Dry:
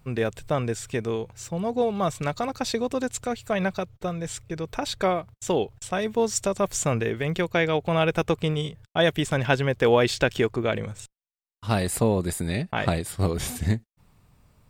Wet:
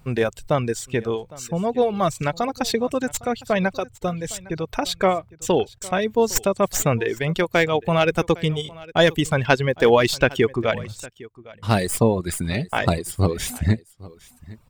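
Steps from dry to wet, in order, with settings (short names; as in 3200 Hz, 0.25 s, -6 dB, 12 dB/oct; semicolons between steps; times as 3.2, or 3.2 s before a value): tracing distortion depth 0.058 ms; reverb removal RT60 1.2 s; echo 0.808 s -21 dB; gain +5 dB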